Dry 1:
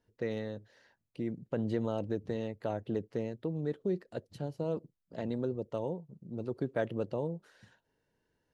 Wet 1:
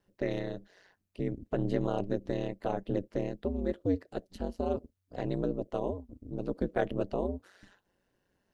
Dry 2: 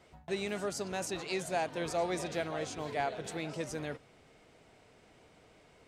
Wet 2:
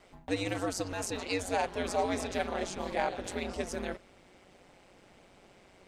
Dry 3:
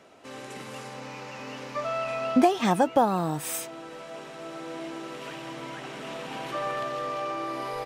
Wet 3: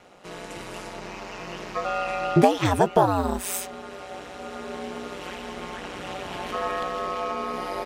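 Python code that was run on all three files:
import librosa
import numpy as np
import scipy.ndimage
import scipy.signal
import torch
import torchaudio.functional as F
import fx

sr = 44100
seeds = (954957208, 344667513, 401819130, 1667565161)

y = x * np.sin(2.0 * np.pi * 93.0 * np.arange(len(x)) / sr)
y = y * 10.0 ** (5.5 / 20.0)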